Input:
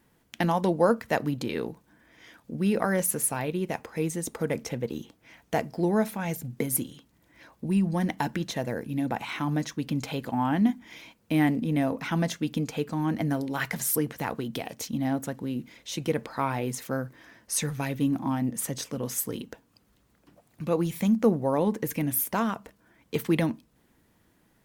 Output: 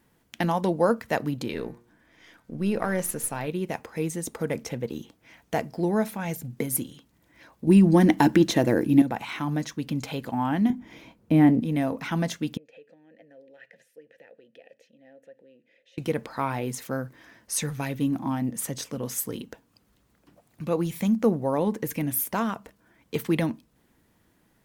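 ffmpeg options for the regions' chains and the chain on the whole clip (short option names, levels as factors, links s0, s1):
-filter_complex "[0:a]asettb=1/sr,asplit=3[s0][s1][s2];[s0]atrim=end=1.534[s3];[s1]atrim=start=1.53:end=3.47,asetpts=PTS-STARTPTS,afade=t=in:d=0.004:c=qsin,afade=t=out:st=1.936:d=0.004:c=qsin,aeval=exprs='if(lt(val(0),0),0.708*val(0),val(0))':c=same,highshelf=f=11000:g=-5,bandreject=f=118.4:t=h:w=4,bandreject=f=236.8:t=h:w=4,bandreject=f=355.2:t=h:w=4,bandreject=f=473.6:t=h:w=4,bandreject=f=592:t=h:w=4,bandreject=f=710.4:t=h:w=4,bandreject=f=828.8:t=h:w=4,bandreject=f=947.2:t=h:w=4,bandreject=f=1065.6:t=h:w=4,bandreject=f=1184:t=h:w=4,bandreject=f=1302.4:t=h:w=4,bandreject=f=1420.8:t=h:w=4,bandreject=f=1539.2:t=h:w=4,bandreject=f=1657.6:t=h:w=4,bandreject=f=1776:t=h:w=4,bandreject=f=1894.4:t=h:w=4,bandreject=f=2012.8:t=h:w=4,bandreject=f=2131.2:t=h:w=4,bandreject=f=2249.6:t=h:w=4,bandreject=f=2368:t=h:w=4,bandreject=f=2486.4:t=h:w=4[s4];[s2]atrim=start=3.466[s5];[s3][s4]acrossfade=d=0.004:c1=hsin:c2=qsin[s6];[s6][s5]acrossfade=d=0.004:c1=qsin:c2=hsin,asettb=1/sr,asplit=3[s7][s8][s9];[s7]atrim=end=7.674[s10];[s8]atrim=start=7.67:end=9.02,asetpts=PTS-STARTPTS,afade=t=in:d=0.004:c=qsin,afade=t=out:st=1.346:d=0.004:c=qsin,equalizer=f=320:w=3.3:g=12,acontrast=77[s11];[s9]atrim=start=9.016[s12];[s10][s11]acrossfade=d=0.004:c1=hsin:c2=qsin[s13];[s13][s12]acrossfade=d=0.004:c1=qsin:c2=hsin,asettb=1/sr,asplit=3[s14][s15][s16];[s14]atrim=end=10.704[s17];[s15]atrim=start=10.7:end=11.61,asetpts=PTS-STARTPTS,afade=t=in:d=0.004:c=qsin,afade=t=out:st=0.906:d=0.004:c=qsin,tiltshelf=f=1100:g=7,asplit=2[s18][s19];[s19]adelay=24,volume=0.237[s20];[s18][s20]amix=inputs=2:normalize=0,atrim=end_sample=40131[s21];[s16]atrim=start=11.606[s22];[s17][s21]acrossfade=d=0.004:c1=hsin:c2=qsin[s23];[s23][s22]acrossfade=d=0.004:c1=qsin:c2=hsin,asettb=1/sr,asplit=3[s24][s25][s26];[s24]atrim=end=12.574[s27];[s25]atrim=start=12.57:end=15.98,asetpts=PTS-STARTPTS,afade=t=in:d=0.004:c=qsin,afade=t=out:st=3.406:d=0.004:c=qsin,acompressor=threshold=0.0112:ratio=2.5:attack=3.2:release=140:knee=1:detection=peak,asplit=3[s28][s29][s30];[s28]bandpass=f=530:t=q:w=8,volume=1[s31];[s29]bandpass=f=1840:t=q:w=8,volume=0.501[s32];[s30]bandpass=f=2480:t=q:w=8,volume=0.355[s33];[s31][s32][s33]amix=inputs=3:normalize=0[s34];[s26]atrim=start=15.976[s35];[s27][s34]acrossfade=d=0.004:c1=hsin:c2=qsin[s36];[s36][s35]acrossfade=d=0.004:c1=qsin:c2=hsin"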